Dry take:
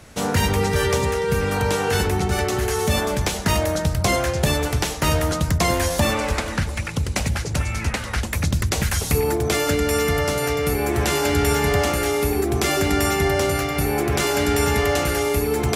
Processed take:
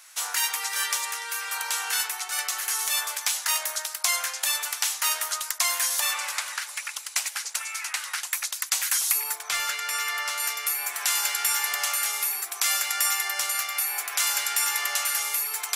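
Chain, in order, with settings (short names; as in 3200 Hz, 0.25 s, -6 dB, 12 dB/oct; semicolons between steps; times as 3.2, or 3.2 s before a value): HPF 980 Hz 24 dB/oct; high shelf 5100 Hz +12 dB; 9.4–10.4 overdrive pedal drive 7 dB, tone 2800 Hz, clips at -2.5 dBFS; gain -5 dB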